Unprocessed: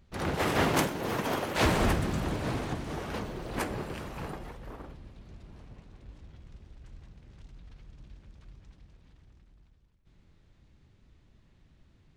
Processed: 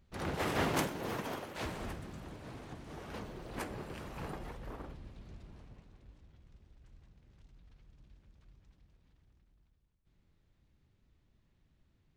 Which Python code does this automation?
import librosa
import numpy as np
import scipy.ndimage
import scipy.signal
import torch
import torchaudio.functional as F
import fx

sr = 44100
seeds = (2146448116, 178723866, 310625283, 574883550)

y = fx.gain(x, sr, db=fx.line((1.1, -6.0), (1.72, -16.0), (2.5, -16.0), (3.2, -8.0), (3.77, -8.0), (4.53, -1.5), (5.28, -1.5), (6.25, -10.0)))